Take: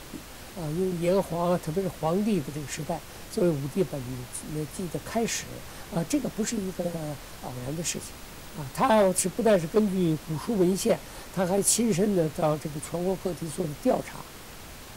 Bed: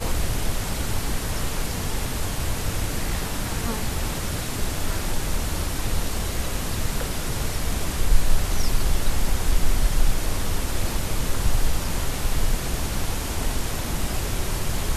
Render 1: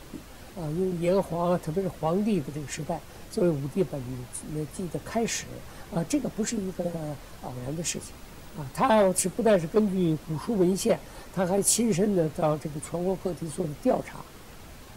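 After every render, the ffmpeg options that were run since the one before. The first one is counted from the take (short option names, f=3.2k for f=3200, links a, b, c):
-af "afftdn=nr=6:nf=-44"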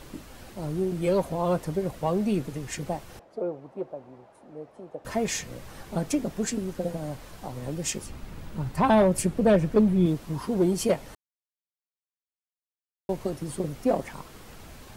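-filter_complex "[0:a]asettb=1/sr,asplit=3[a][b][c];[a]atrim=end=3.194[d];[b]atrim=start=3.19:end=5.05,asetpts=PTS-STARTPTS,afade=t=in:d=0.004:c=qsin,afade=t=out:st=1.856:d=0.004:c=qsin,bandpass=f=660:t=q:w=1.8[e];[c]atrim=start=5.046[f];[d][e]acrossfade=d=0.004:c1=hsin:c2=qsin[g];[g][f]acrossfade=d=0.004:c1=qsin:c2=hsin,asettb=1/sr,asplit=3[h][i][j];[h]atrim=end=8.064[k];[i]atrim=start=8.06:end=10.06,asetpts=PTS-STARTPTS,afade=t=in:d=0.004:c=qsin,afade=t=out:st=1.996:d=0.004:c=qsin,bass=f=250:g=7,treble=f=4k:g=-5[l];[j]atrim=start=10.056[m];[k][l]acrossfade=d=0.004:c1=hsin:c2=qsin[n];[n][m]acrossfade=d=0.004:c1=qsin:c2=hsin,asplit=3[o][p][q];[o]atrim=end=11.15,asetpts=PTS-STARTPTS,afade=t=out:st=11.146:d=0.004:c=hsin[r];[p]atrim=start=11.15:end=13.09,asetpts=PTS-STARTPTS,volume=0[s];[q]atrim=start=13.09,asetpts=PTS-STARTPTS,afade=t=in:d=0.004:c=hsin[t];[r][s][t]concat=n=3:v=0:a=1"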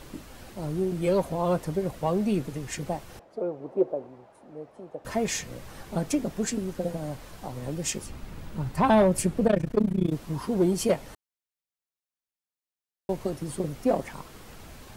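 -filter_complex "[0:a]asettb=1/sr,asplit=3[a][b][c];[a]atrim=end=3.604[d];[b]atrim=start=3.6:end=4.07,asetpts=PTS-STARTPTS,afade=t=in:d=0.004:c=qsin,afade=t=out:st=0.466:d=0.004:c=qsin,equalizer=f=410:t=o:w=1.4:g=11[e];[c]atrim=start=4.066[f];[d][e]acrossfade=d=0.004:c1=hsin:c2=qsin[g];[g][f]acrossfade=d=0.004:c1=qsin:c2=hsin,asettb=1/sr,asplit=3[h][i][j];[h]atrim=end=9.474[k];[i]atrim=start=9.47:end=10.13,asetpts=PTS-STARTPTS,afade=t=in:d=0.004:c=qsin,afade=t=out:st=0.656:d=0.004:c=qsin,tremolo=f=29:d=0.947[l];[j]atrim=start=10.126[m];[k][l]acrossfade=d=0.004:c1=hsin:c2=qsin[n];[n][m]acrossfade=d=0.004:c1=qsin:c2=hsin"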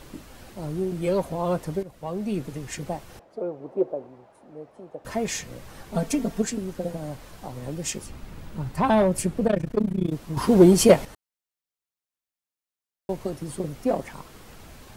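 -filter_complex "[0:a]asettb=1/sr,asplit=3[a][b][c];[a]atrim=end=5.944[d];[b]atrim=start=5.94:end=6.42,asetpts=PTS-STARTPTS,afade=t=in:d=0.004:c=qsin,afade=t=out:st=0.476:d=0.004:c=qsin,aecho=1:1:4.4:0.95,atrim=end_sample=21168[e];[c]atrim=start=6.416[f];[d][e]acrossfade=d=0.004:c1=hsin:c2=qsin[g];[g][f]acrossfade=d=0.004:c1=qsin:c2=hsin,asplit=4[h][i][j][k];[h]atrim=end=1.83,asetpts=PTS-STARTPTS,afade=t=out:st=1.826:d=0.004:c=hsin:silence=0.188365[l];[i]atrim=start=1.83:end=10.372,asetpts=PTS-STARTPTS,afade=t=in:d=0.67:silence=0.188365[m];[j]atrim=start=10.368:end=11.052,asetpts=PTS-STARTPTS,volume=9.5dB[n];[k]atrim=start=11.048[o];[l][m]concat=n=2:v=0:a=1[p];[p][n]acrossfade=d=0.004:c1=hsin:c2=hsin[q];[q][o]acrossfade=d=0.004:c1=hsin:c2=hsin"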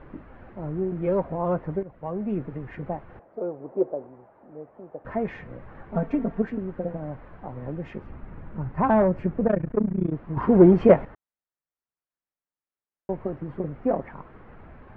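-af "lowpass=f=1.9k:w=0.5412,lowpass=f=1.9k:w=1.3066"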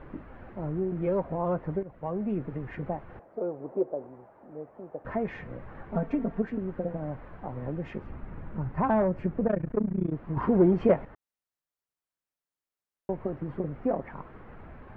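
-af "acompressor=threshold=-30dB:ratio=1.5"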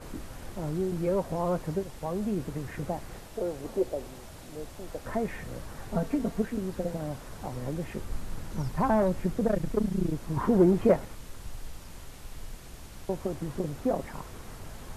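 -filter_complex "[1:a]volume=-19.5dB[a];[0:a][a]amix=inputs=2:normalize=0"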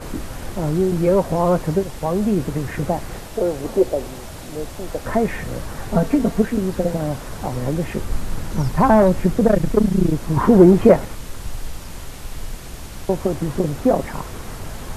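-af "volume=11.5dB,alimiter=limit=-1dB:level=0:latency=1"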